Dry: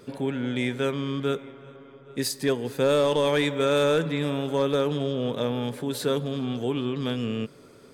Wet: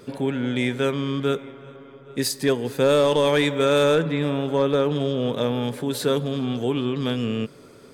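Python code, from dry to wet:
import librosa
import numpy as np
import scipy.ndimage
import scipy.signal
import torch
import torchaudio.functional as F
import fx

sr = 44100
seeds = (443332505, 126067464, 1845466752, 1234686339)

y = fx.high_shelf(x, sr, hz=4800.0, db=-9.0, at=(3.95, 4.96))
y = F.gain(torch.from_numpy(y), 3.5).numpy()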